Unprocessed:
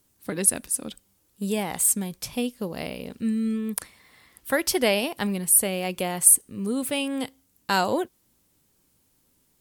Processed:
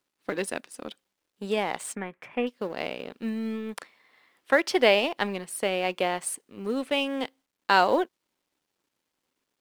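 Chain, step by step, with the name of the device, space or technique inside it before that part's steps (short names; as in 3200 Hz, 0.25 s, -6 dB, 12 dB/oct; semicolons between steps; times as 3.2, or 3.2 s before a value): phone line with mismatched companding (BPF 340–3500 Hz; G.711 law mismatch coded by A); 1.95–2.47 resonant high shelf 3000 Hz -14 dB, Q 3; gain +4 dB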